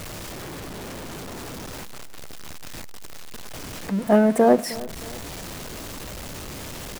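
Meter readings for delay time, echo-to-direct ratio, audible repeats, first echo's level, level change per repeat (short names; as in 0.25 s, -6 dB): 0.312 s, -18.5 dB, 2, -19.0 dB, -7.5 dB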